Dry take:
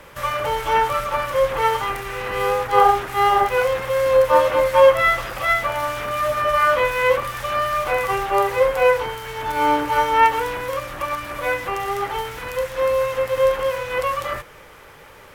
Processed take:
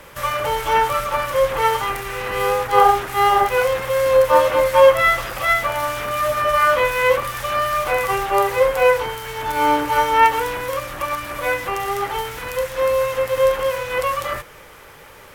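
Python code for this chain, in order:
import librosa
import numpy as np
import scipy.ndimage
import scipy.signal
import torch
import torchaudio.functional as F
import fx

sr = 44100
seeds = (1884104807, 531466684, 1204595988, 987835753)

y = fx.high_shelf(x, sr, hz=5500.0, db=5.0)
y = F.gain(torch.from_numpy(y), 1.0).numpy()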